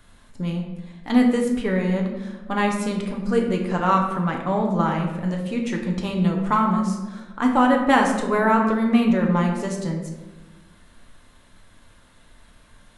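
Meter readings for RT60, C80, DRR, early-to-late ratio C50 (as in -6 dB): 1.3 s, 7.0 dB, 0.5 dB, 5.0 dB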